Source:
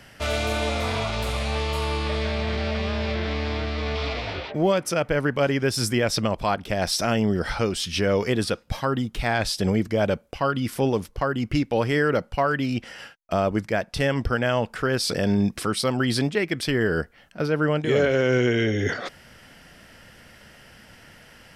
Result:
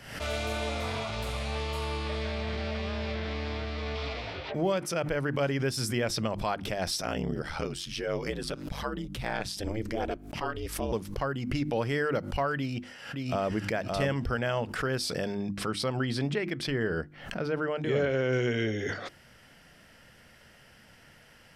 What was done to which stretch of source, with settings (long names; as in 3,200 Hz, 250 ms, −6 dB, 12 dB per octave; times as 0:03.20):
0:07.01–0:10.91: ring modulation 31 Hz → 190 Hz
0:12.56–0:13.55: delay throw 570 ms, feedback 15%, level −3 dB
0:15.35–0:18.33: high-shelf EQ 6,700 Hz −11.5 dB
whole clip: parametric band 140 Hz +3 dB 0.3 octaves; mains-hum notches 50/100/150/200/250/300/350 Hz; background raised ahead of every attack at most 81 dB per second; level −7 dB